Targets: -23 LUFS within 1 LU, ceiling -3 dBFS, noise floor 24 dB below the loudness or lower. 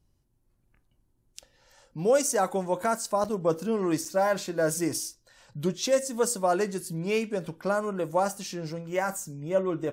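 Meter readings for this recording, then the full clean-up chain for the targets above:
dropouts 2; longest dropout 5.7 ms; loudness -28.0 LUFS; peak level -12.5 dBFS; loudness target -23.0 LUFS
-> interpolate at 3.24/4.05 s, 5.7 ms; trim +5 dB

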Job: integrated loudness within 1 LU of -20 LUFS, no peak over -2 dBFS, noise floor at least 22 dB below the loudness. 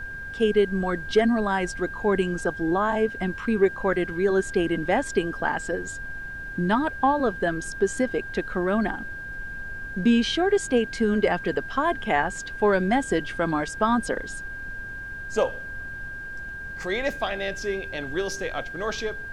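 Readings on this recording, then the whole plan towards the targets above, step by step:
steady tone 1.6 kHz; tone level -34 dBFS; noise floor -36 dBFS; noise floor target -48 dBFS; loudness -25.5 LUFS; peak level -8.5 dBFS; loudness target -20.0 LUFS
-> band-stop 1.6 kHz, Q 30; noise print and reduce 12 dB; trim +5.5 dB

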